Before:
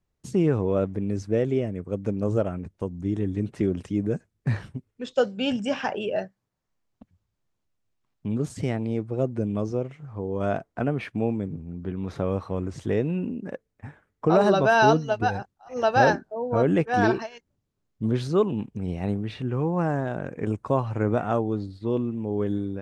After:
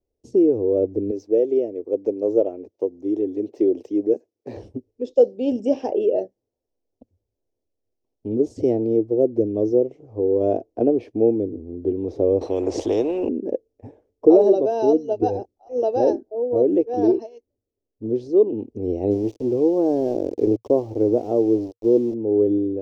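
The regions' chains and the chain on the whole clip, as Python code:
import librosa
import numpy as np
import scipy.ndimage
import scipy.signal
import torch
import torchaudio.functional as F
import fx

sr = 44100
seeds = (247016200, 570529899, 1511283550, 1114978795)

y = fx.chain(x, sr, fx.weighting(curve='A'),
    fx.resample_linear(factor=2), at=(1.11, 4.57))
y = fx.chain(y, sr, fx.high_shelf(hz=2700.0, db=-10.5),
    fx.spectral_comp(ratio=4.0), at=(12.41, 13.29))
y = fx.chain(y, sr, fx.high_shelf(hz=4100.0, db=-7.0),
    fx.sample_gate(floor_db=-34.5), at=(19.11, 22.14))
y = fx.curve_eq(y, sr, hz=(110.0, 160.0, 240.0, 470.0, 810.0, 1400.0, 2600.0, 3900.0, 5600.0, 8700.0), db=(0, -15, 4, 13, 0, -23, -11, -9, -1, -13))
y = fx.rider(y, sr, range_db=4, speed_s=0.5)
y = fx.dynamic_eq(y, sr, hz=330.0, q=2.7, threshold_db=-40.0, ratio=4.0, max_db=7)
y = F.gain(torch.from_numpy(y), -4.5).numpy()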